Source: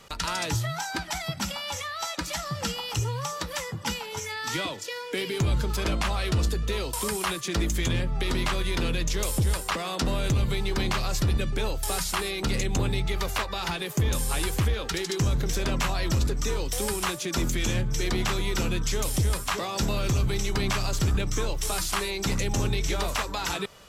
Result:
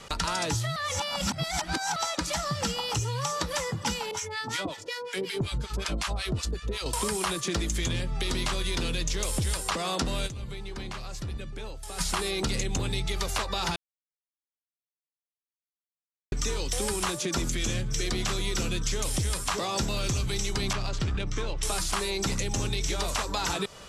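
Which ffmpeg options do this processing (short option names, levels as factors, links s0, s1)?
-filter_complex "[0:a]asettb=1/sr,asplit=3[s0][s1][s2];[s0]atrim=end=4.114[s3];[s1]atrim=start=4.11:end=6.86,asetpts=PTS-STARTPTS,afade=t=in:d=0.004:c=qsin,afade=t=out:st=2.746:d=0.004:c=qsin,acrossover=split=870[s4][s5];[s4]aeval=exprs='val(0)*(1-1/2+1/2*cos(2*PI*5.4*n/s))':c=same[s6];[s5]aeval=exprs='val(0)*(1-1/2-1/2*cos(2*PI*5.4*n/s))':c=same[s7];[s6][s7]amix=inputs=2:normalize=0[s8];[s2]atrim=start=6.856[s9];[s3][s8]acrossfade=d=0.004:c1=hsin:c2=qsin[s10];[s10][s9]acrossfade=d=0.004:c1=qsin:c2=hsin,asettb=1/sr,asplit=3[s11][s12][s13];[s11]atrim=end=17.484[s14];[s12]atrim=start=17.48:end=18.96,asetpts=PTS-STARTPTS,afade=t=in:d=0.004:c=qsin,afade=t=out:st=1.476:d=0.004:c=qsin,bandreject=f=900:w=8.3[s15];[s13]atrim=start=18.956[s16];[s14][s15]acrossfade=d=0.004:c1=hsin:c2=qsin[s17];[s17][s16]acrossfade=d=0.004:c1=qsin:c2=hsin,asettb=1/sr,asplit=3[s18][s19][s20];[s18]atrim=end=20.734[s21];[s19]atrim=start=20.73:end=21.63,asetpts=PTS-STARTPTS,afade=t=in:d=0.004:c=qsin,afade=t=out:st=0.896:d=0.004:c=qsin,adynamicsmooth=sensitivity=2:basefreq=2500[s22];[s20]atrim=start=21.626[s23];[s21][s22]acrossfade=d=0.004:c1=hsin:c2=qsin[s24];[s24][s23]acrossfade=d=0.004:c1=qsin:c2=hsin,asplit=7[s25][s26][s27][s28][s29][s30][s31];[s25]atrim=end=0.762[s32];[s26]atrim=start=0.758:end=1.962,asetpts=PTS-STARTPTS,areverse[s33];[s27]atrim=start=1.958:end=10.41,asetpts=PTS-STARTPTS,afade=t=out:st=8.302:d=0.15:c=exp:silence=0.158489[s34];[s28]atrim=start=10.41:end=11.86,asetpts=PTS-STARTPTS,volume=0.158[s35];[s29]atrim=start=11.86:end=13.76,asetpts=PTS-STARTPTS,afade=t=in:d=0.15:c=exp:silence=0.158489,afade=t=out:st=1.896:d=0.004:c=hsin[s36];[s30]atrim=start=13.76:end=16.32,asetpts=PTS-STARTPTS,volume=0[s37];[s31]atrim=start=16.32,asetpts=PTS-STARTPTS,afade=t=in:d=0.004:c=hsin[s38];[s32][s33]acrossfade=d=0.004:c1=hsin:c2=hsin[s39];[s34][s35][s36][s37][s38]concat=n=5:v=0:a=1[s40];[s39][s40]acrossfade=d=0.004:c1=hsin:c2=hsin,lowpass=f=11000:w=0.5412,lowpass=f=11000:w=1.3066,acrossover=split=1600|3400[s41][s42][s43];[s41]acompressor=threshold=0.02:ratio=4[s44];[s42]acompressor=threshold=0.00398:ratio=4[s45];[s43]acompressor=threshold=0.0141:ratio=4[s46];[s44][s45][s46]amix=inputs=3:normalize=0,volume=1.88"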